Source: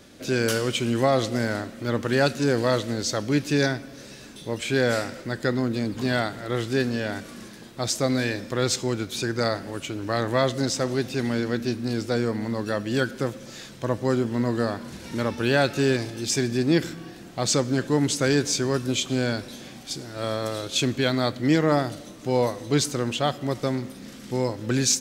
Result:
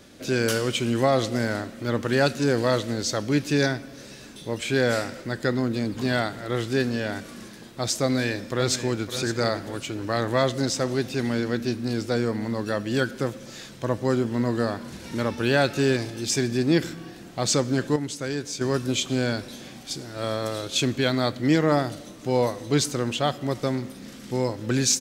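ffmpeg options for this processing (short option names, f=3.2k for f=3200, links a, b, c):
-filter_complex "[0:a]asplit=2[a][b];[b]afade=t=in:st=8.03:d=0.01,afade=t=out:st=9.12:d=0.01,aecho=0:1:560|1120|1680|2240:0.281838|0.112735|0.0450941|0.0180377[c];[a][c]amix=inputs=2:normalize=0,asplit=3[d][e][f];[d]atrim=end=17.962[g];[e]atrim=start=17.958:end=18.612,asetpts=PTS-STARTPTS,volume=-8dB[h];[f]atrim=start=18.608[i];[g][h]acrossfade=d=0.004:c1=hsin:c2=hsin[j];[j][i]acrossfade=d=0.004:c1=hsin:c2=hsin"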